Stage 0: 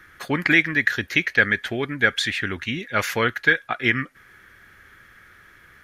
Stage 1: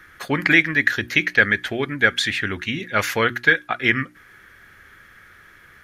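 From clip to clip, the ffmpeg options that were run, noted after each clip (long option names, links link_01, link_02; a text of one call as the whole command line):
ffmpeg -i in.wav -af "bandreject=frequency=60:width_type=h:width=6,bandreject=frequency=120:width_type=h:width=6,bandreject=frequency=180:width_type=h:width=6,bandreject=frequency=240:width_type=h:width=6,bandreject=frequency=300:width_type=h:width=6,bandreject=frequency=360:width_type=h:width=6,volume=2dB" out.wav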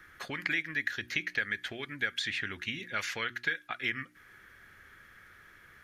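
ffmpeg -i in.wav -filter_complex "[0:a]acrossover=split=1600|7900[link_01][link_02][link_03];[link_01]acompressor=threshold=-34dB:ratio=4[link_04];[link_02]acompressor=threshold=-23dB:ratio=4[link_05];[link_03]acompressor=threshold=-57dB:ratio=4[link_06];[link_04][link_05][link_06]amix=inputs=3:normalize=0,volume=-7.5dB" out.wav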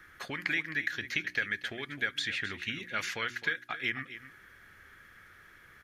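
ffmpeg -i in.wav -af "aecho=1:1:262:0.224" out.wav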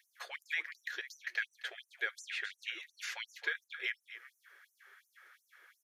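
ffmpeg -i in.wav -af "afftfilt=real='re*gte(b*sr/1024,320*pow(5800/320,0.5+0.5*sin(2*PI*2.8*pts/sr)))':imag='im*gte(b*sr/1024,320*pow(5800/320,0.5+0.5*sin(2*PI*2.8*pts/sr)))':win_size=1024:overlap=0.75,volume=-4dB" out.wav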